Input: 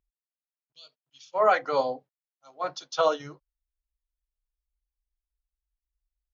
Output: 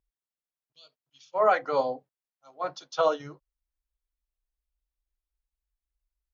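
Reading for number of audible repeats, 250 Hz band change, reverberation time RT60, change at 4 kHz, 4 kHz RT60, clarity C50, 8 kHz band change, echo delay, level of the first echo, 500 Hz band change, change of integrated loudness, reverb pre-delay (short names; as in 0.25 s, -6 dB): none, 0.0 dB, none, -4.0 dB, none, none, n/a, none, none, -0.5 dB, -1.0 dB, none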